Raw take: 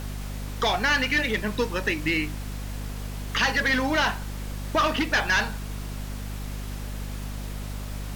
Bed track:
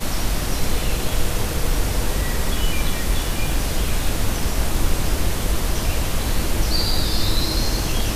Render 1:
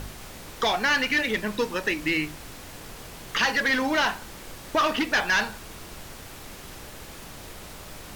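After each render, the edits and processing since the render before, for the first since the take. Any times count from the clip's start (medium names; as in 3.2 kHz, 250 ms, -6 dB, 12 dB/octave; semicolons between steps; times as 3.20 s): de-hum 50 Hz, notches 5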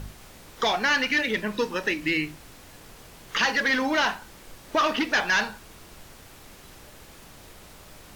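noise print and reduce 6 dB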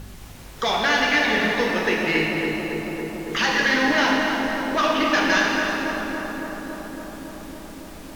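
filtered feedback delay 279 ms, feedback 84%, low-pass 1.8 kHz, level -6 dB; plate-style reverb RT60 2.9 s, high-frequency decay 0.9×, DRR -1.5 dB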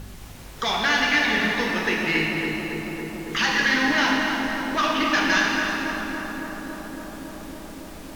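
dynamic bell 530 Hz, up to -7 dB, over -39 dBFS, Q 1.4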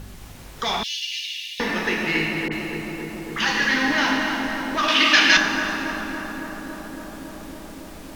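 0.83–1.60 s: elliptic high-pass 2.8 kHz, stop band 50 dB; 2.48–3.71 s: phase dispersion highs, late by 40 ms, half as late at 1.9 kHz; 4.88–5.37 s: frequency weighting D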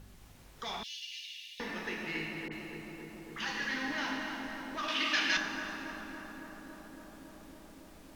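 trim -15 dB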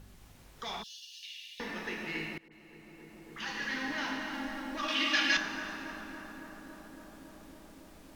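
0.82–1.23 s: static phaser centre 430 Hz, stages 8; 2.38–3.76 s: fade in linear, from -22 dB; 4.33–5.37 s: comb 3.6 ms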